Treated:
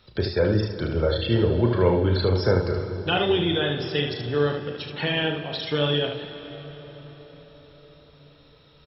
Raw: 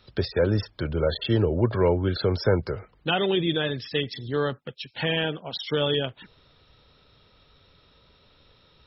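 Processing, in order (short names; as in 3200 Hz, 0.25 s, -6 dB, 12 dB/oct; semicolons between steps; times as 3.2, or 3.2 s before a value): early reflections 34 ms -8 dB, 75 ms -6 dB; reverb RT60 5.6 s, pre-delay 75 ms, DRR 10 dB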